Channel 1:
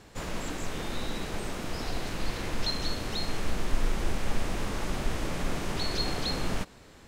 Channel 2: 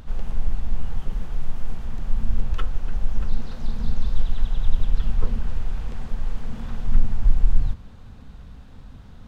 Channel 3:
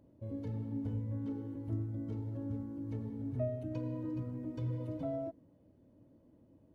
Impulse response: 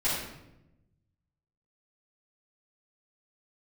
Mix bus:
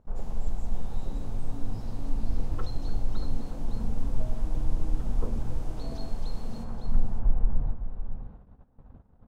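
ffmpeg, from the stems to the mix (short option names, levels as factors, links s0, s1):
-filter_complex "[0:a]volume=0.188,asplit=2[s0][s1];[s1]volume=0.422[s2];[1:a]lowpass=1400,equalizer=f=810:t=o:w=2.8:g=15,volume=0.473,asplit=2[s3][s4];[s4]volume=0.299[s5];[2:a]adelay=800,volume=0.708[s6];[s2][s5]amix=inputs=2:normalize=0,aecho=0:1:558:1[s7];[s0][s3][s6][s7]amix=inputs=4:normalize=0,agate=range=0.158:threshold=0.00708:ratio=16:detection=peak,equalizer=f=1300:t=o:w=2.8:g=-11"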